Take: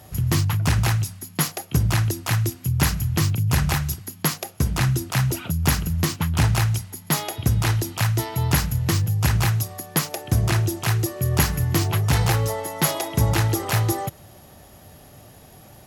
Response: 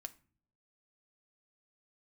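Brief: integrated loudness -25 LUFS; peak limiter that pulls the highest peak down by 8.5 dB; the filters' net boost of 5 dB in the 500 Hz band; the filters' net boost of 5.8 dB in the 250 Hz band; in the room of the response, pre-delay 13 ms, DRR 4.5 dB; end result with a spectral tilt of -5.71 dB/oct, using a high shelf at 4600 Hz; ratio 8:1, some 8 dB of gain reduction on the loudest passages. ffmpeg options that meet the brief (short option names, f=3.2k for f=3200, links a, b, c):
-filter_complex "[0:a]equalizer=f=250:t=o:g=8.5,equalizer=f=500:t=o:g=3.5,highshelf=f=4.6k:g=-4,acompressor=threshold=-21dB:ratio=8,alimiter=limit=-16.5dB:level=0:latency=1,asplit=2[a][b];[1:a]atrim=start_sample=2205,adelay=13[c];[b][c]afir=irnorm=-1:irlink=0,volume=0dB[d];[a][d]amix=inputs=2:normalize=0,volume=2.5dB"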